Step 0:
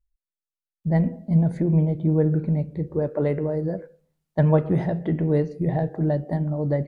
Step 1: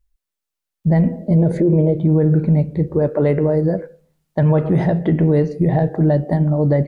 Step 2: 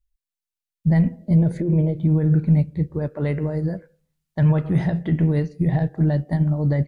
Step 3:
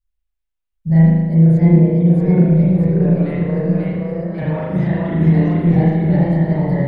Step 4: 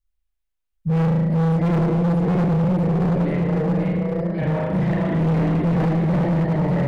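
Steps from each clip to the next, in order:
time-frequency box 1.19–1.98 s, 320–640 Hz +10 dB; peak limiter -17 dBFS, peak gain reduction 10 dB; trim +9 dB
peaking EQ 490 Hz -11.5 dB 2.4 oct; upward expansion 1.5:1, over -35 dBFS; trim +3 dB
spring tank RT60 1.3 s, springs 37 ms, chirp 80 ms, DRR -8.5 dB; ever faster or slower copies 721 ms, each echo +1 st, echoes 2; trim -5.5 dB
hard clipper -17 dBFS, distortion -6 dB

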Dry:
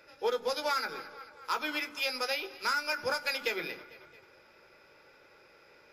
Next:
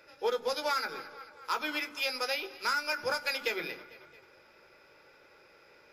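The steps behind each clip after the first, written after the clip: hum notches 50/100/150/200/250 Hz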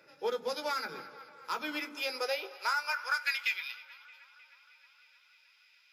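high-pass sweep 160 Hz -> 3 kHz, 1.60–3.67 s; feedback echo behind a band-pass 311 ms, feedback 68%, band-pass 1.6 kHz, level -21.5 dB; trim -3.5 dB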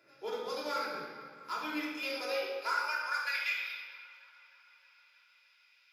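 simulated room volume 1200 m³, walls mixed, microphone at 3.1 m; trim -7.5 dB

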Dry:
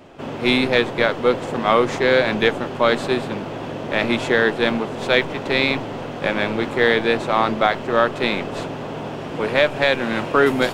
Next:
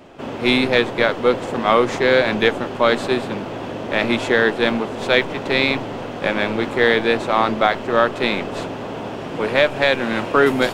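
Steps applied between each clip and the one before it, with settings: hum notches 50/100/150 Hz; trim +1 dB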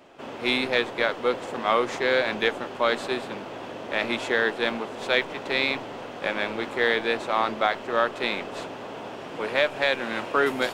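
bass shelf 260 Hz -11 dB; trim -5.5 dB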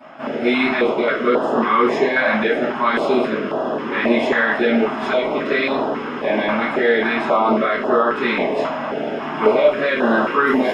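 peak limiter -18 dBFS, peak gain reduction 10 dB; reverberation RT60 0.50 s, pre-delay 3 ms, DRR -12.5 dB; step-sequenced notch 3.7 Hz 400–2200 Hz; trim -5.5 dB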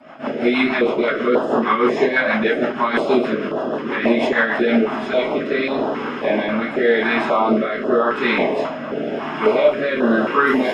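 rotary cabinet horn 6.3 Hz, later 0.9 Hz, at 4.55 s; trim +2 dB

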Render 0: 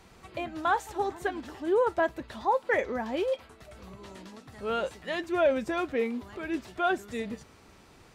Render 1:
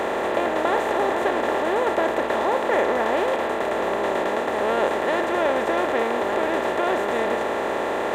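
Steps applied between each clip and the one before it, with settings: spectral levelling over time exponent 0.2; band-stop 1.5 kHz, Q 11; trim -3.5 dB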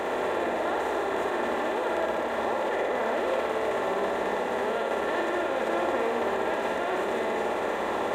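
peak limiter -16 dBFS, peak gain reduction 7.5 dB; on a send: flutter echo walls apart 10.1 m, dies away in 0.96 s; on the sum: trim -5.5 dB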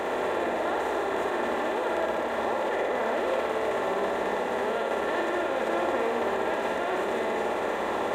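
crackle 45 per s -53 dBFS

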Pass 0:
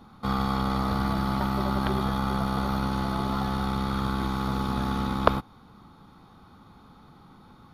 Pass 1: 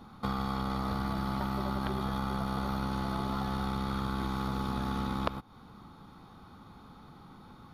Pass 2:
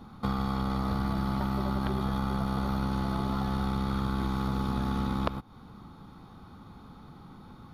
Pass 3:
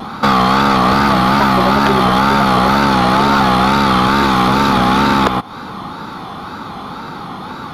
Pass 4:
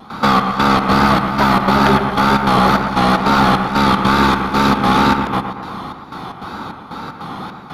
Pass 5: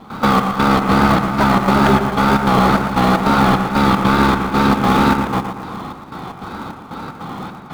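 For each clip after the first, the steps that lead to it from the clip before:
compression 6:1, threshold -29 dBFS, peak gain reduction 15.5 dB
bass shelf 360 Hz +5 dB
overdrive pedal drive 26 dB, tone 4.6 kHz, clips at -10 dBFS; wow and flutter 96 cents; trim +9 dB
trance gate ".xxx..xx" 152 bpm -12 dB; on a send: bucket-brigade echo 116 ms, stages 2048, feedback 55%, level -7.5 dB; on the sum: trim -1 dB
distance through air 120 m; in parallel at -11 dB: sample-rate reducer 1.6 kHz, jitter 20%; on the sum: trim -1 dB

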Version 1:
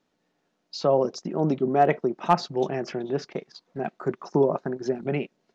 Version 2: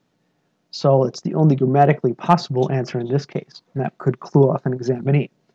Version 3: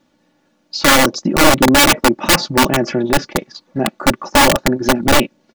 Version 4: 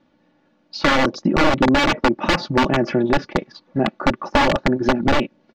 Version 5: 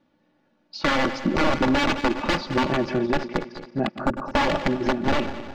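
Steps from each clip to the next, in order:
peaking EQ 130 Hz +12 dB 0.92 oct; trim +4.5 dB
integer overflow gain 11.5 dB; comb 3.5 ms, depth 66%; trim +6 dB
compression, threshold -11 dBFS, peak gain reduction 6 dB; distance through air 190 m
backward echo that repeats 106 ms, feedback 67%, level -11 dB; time-frequency box 4.06–4.31 s, 1.7–6.7 kHz -10 dB; trim -5.5 dB

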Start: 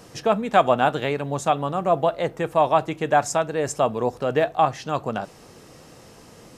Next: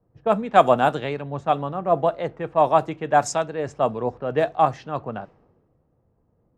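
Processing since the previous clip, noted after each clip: level-controlled noise filter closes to 790 Hz, open at -14 dBFS; dynamic bell 2.9 kHz, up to -4 dB, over -34 dBFS, Q 0.79; three bands expanded up and down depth 70%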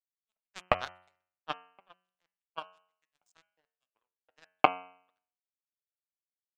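LFO high-pass saw up 2.8 Hz 730–4600 Hz; power-law waveshaper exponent 3; de-hum 91.11 Hz, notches 34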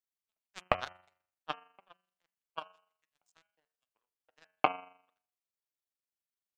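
AM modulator 24 Hz, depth 30%

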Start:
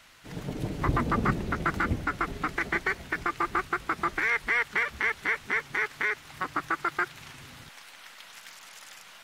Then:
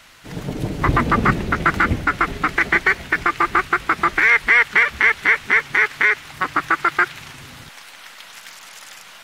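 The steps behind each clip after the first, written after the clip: dynamic bell 2.2 kHz, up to +5 dB, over -40 dBFS, Q 0.76; trim +8 dB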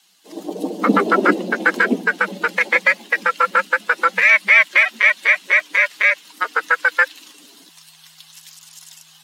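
expander on every frequency bin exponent 1.5; frequency shift +160 Hz; trim +4 dB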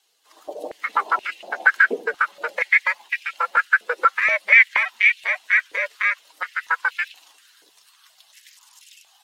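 step-sequenced high-pass 4.2 Hz 460–2500 Hz; trim -9.5 dB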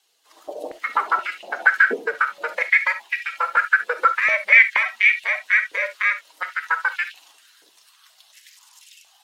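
reverberation, pre-delay 4 ms, DRR 10 dB

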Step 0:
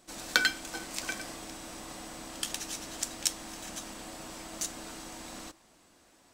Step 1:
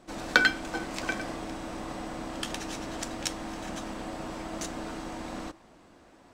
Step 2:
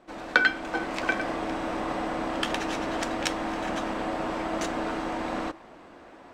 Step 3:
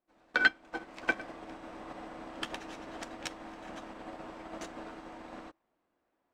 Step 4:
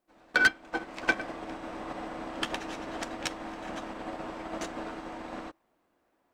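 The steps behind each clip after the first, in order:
low-pass 1.3 kHz 6 dB/octave; trim +9 dB
tone controls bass -8 dB, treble -12 dB; gain riding within 4 dB 0.5 s; trim +5 dB
loudness maximiser +9 dB; upward expansion 2.5:1, over -32 dBFS; trim -8 dB
saturation -21 dBFS, distortion -11 dB; trim +6.5 dB

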